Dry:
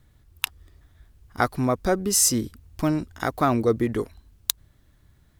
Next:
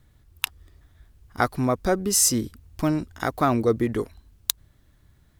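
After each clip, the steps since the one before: no audible change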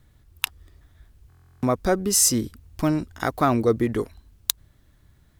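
buffer glitch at 1.28 s, samples 1024, times 14; trim +1 dB

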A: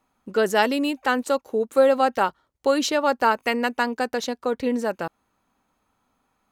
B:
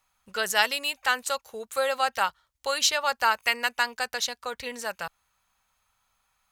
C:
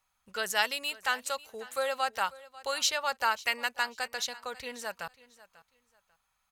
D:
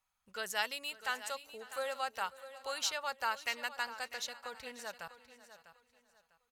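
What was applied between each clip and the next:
amplifier tone stack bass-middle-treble 10-0-10; trim +6 dB
feedback delay 543 ms, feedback 24%, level -19.5 dB; trim -5 dB
feedback delay 649 ms, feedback 26%, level -14 dB; trim -7 dB

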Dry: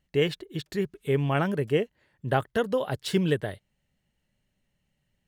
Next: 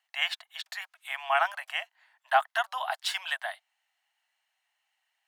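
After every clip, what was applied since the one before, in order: steep high-pass 680 Hz 96 dB/octave; treble shelf 4.9 kHz -6 dB; trim +5.5 dB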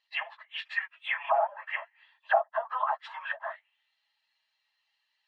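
phase randomisation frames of 50 ms; comb of notches 730 Hz; touch-sensitive low-pass 650–4300 Hz down, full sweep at -27 dBFS; trim -1.5 dB

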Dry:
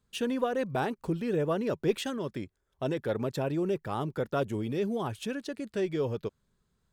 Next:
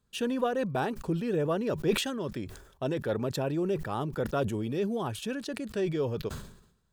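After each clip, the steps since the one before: band-stop 2.1 kHz, Q 11; decay stretcher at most 81 dB/s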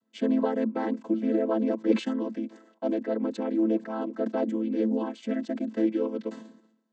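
vocoder on a held chord minor triad, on A3; trim +4 dB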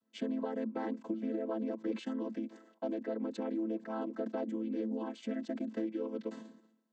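compression 5:1, threshold -29 dBFS, peak gain reduction 11.5 dB; trim -4 dB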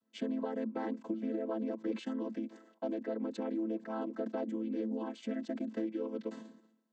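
no audible change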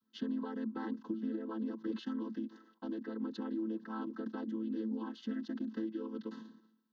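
static phaser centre 2.3 kHz, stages 6; trim +1.5 dB

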